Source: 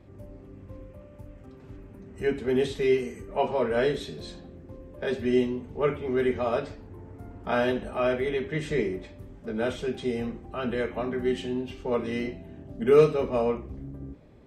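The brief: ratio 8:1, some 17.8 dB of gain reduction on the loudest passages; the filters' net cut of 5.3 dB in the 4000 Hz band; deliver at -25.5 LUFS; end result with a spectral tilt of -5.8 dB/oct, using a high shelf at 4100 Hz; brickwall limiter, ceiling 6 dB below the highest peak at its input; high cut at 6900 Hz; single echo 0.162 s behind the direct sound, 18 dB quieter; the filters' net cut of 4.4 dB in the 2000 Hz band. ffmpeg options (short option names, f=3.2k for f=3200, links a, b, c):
-af "lowpass=6.9k,equalizer=f=2k:t=o:g=-5,equalizer=f=4k:t=o:g=-7.5,highshelf=f=4.1k:g=5,acompressor=threshold=-33dB:ratio=8,alimiter=level_in=6dB:limit=-24dB:level=0:latency=1,volume=-6dB,aecho=1:1:162:0.126,volume=15dB"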